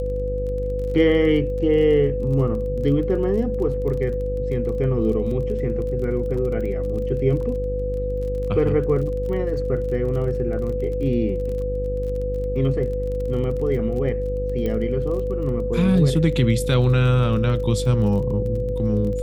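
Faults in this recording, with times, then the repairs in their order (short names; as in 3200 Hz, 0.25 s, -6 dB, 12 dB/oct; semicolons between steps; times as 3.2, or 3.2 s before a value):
buzz 50 Hz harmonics 11 -27 dBFS
crackle 28/s -31 dBFS
tone 500 Hz -25 dBFS
14.66 pop -15 dBFS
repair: de-click; de-hum 50 Hz, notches 11; notch 500 Hz, Q 30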